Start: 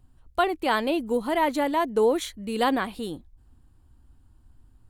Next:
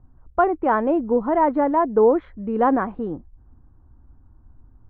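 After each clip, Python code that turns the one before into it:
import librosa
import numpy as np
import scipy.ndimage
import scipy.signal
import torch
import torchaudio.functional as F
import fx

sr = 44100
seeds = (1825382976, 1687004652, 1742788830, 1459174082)

y = scipy.signal.sosfilt(scipy.signal.butter(4, 1400.0, 'lowpass', fs=sr, output='sos'), x)
y = y * librosa.db_to_amplitude(5.5)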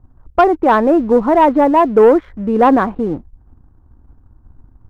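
y = fx.leveller(x, sr, passes=1)
y = y * librosa.db_to_amplitude(5.0)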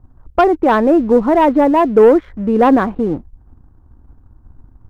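y = fx.dynamic_eq(x, sr, hz=980.0, q=0.99, threshold_db=-23.0, ratio=4.0, max_db=-4)
y = y * librosa.db_to_amplitude(1.5)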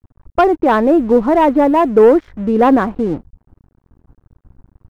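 y = np.sign(x) * np.maximum(np.abs(x) - 10.0 ** (-44.0 / 20.0), 0.0)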